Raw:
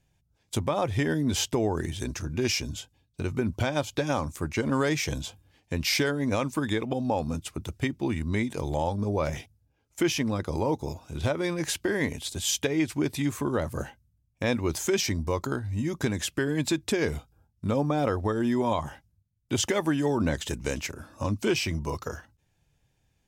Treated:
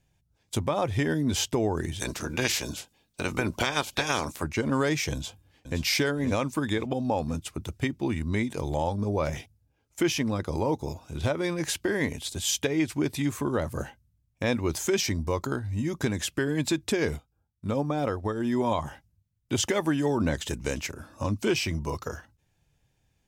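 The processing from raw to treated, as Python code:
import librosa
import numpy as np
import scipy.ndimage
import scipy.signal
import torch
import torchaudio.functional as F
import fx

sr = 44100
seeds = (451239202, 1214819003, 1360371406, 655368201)

y = fx.spec_clip(x, sr, under_db=19, at=(1.99, 4.42), fade=0.02)
y = fx.echo_throw(y, sr, start_s=5.13, length_s=0.69, ms=520, feedback_pct=40, wet_db=-9.0)
y = fx.upward_expand(y, sr, threshold_db=-42.0, expansion=1.5, at=(17.15, 18.52), fade=0.02)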